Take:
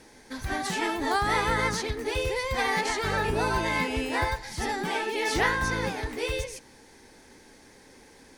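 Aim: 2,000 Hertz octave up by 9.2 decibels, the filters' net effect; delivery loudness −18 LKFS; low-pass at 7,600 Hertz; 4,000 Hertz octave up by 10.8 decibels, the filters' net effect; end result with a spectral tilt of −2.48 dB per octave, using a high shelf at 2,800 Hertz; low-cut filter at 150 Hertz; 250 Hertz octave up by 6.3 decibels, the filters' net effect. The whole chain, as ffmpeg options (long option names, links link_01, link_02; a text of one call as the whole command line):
ffmpeg -i in.wav -af "highpass=150,lowpass=7600,equalizer=frequency=250:width_type=o:gain=8.5,equalizer=frequency=2000:width_type=o:gain=7.5,highshelf=frequency=2800:gain=4,equalizer=frequency=4000:width_type=o:gain=8,volume=2.5dB" out.wav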